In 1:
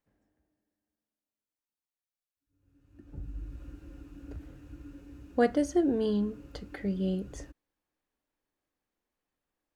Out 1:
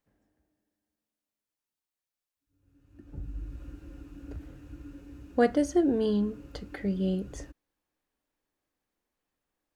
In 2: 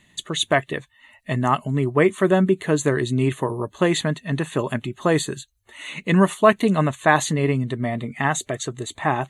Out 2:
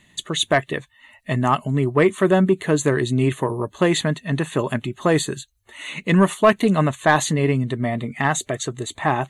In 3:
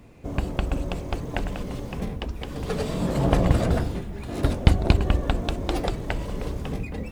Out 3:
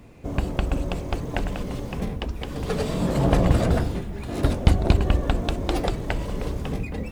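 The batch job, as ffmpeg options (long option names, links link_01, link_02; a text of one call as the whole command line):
ffmpeg -i in.wav -af "acontrast=33,volume=-3.5dB" out.wav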